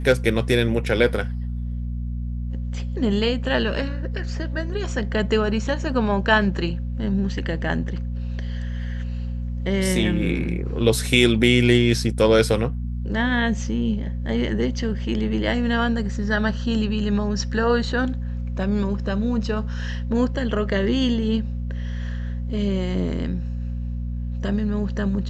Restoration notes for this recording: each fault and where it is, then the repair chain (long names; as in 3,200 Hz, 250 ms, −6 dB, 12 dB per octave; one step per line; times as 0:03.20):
mains hum 60 Hz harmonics 4 −27 dBFS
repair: hum removal 60 Hz, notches 4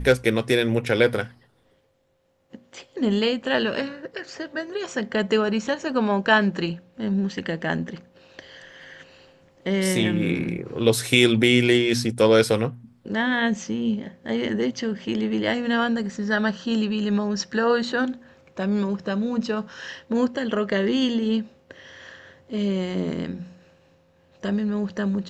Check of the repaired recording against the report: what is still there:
none of them is left